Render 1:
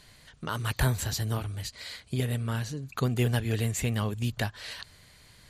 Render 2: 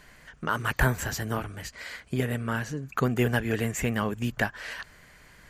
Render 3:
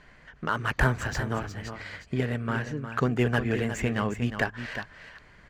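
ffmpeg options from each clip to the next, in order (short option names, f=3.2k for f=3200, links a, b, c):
-af "equalizer=f=100:t=o:w=0.67:g=-11,equalizer=f=1.6k:t=o:w=0.67:g=5,equalizer=f=4k:t=o:w=0.67:g=-12,equalizer=f=10k:t=o:w=0.67:g=-9,volume=4.5dB"
-filter_complex "[0:a]adynamicsmooth=sensitivity=4:basefreq=4.1k,asplit=2[a][b];[b]aecho=0:1:358:0.335[c];[a][c]amix=inputs=2:normalize=0"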